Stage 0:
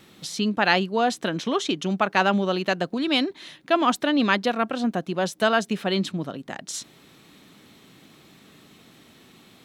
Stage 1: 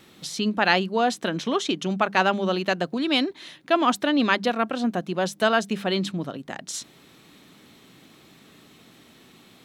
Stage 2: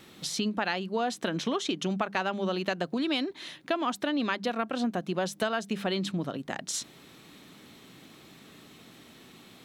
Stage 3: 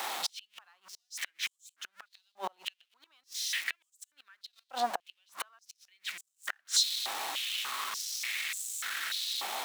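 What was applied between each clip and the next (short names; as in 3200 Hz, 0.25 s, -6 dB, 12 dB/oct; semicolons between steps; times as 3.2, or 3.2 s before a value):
notches 50/100/150/200 Hz
compressor 6:1, threshold -26 dBFS, peak gain reduction 12 dB
zero-crossing step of -32.5 dBFS; flipped gate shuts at -20 dBFS, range -37 dB; stepped high-pass 3.4 Hz 810–7500 Hz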